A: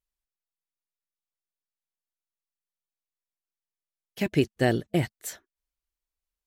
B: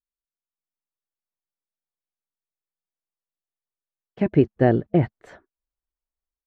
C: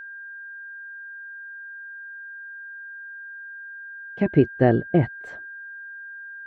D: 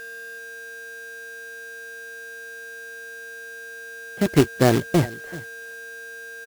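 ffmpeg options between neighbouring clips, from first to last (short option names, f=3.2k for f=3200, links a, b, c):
-af "dynaudnorm=f=300:g=3:m=10dB,agate=range=-9dB:threshold=-49dB:ratio=16:detection=peak,lowpass=1.2k,volume=-1.5dB"
-af "aeval=exprs='val(0)+0.0158*sin(2*PI*1600*n/s)':c=same"
-af "aecho=1:1:381:0.112,aeval=exprs='val(0)+0.00562*sin(2*PI*460*n/s)':c=same,acrusher=bits=2:mode=log:mix=0:aa=0.000001"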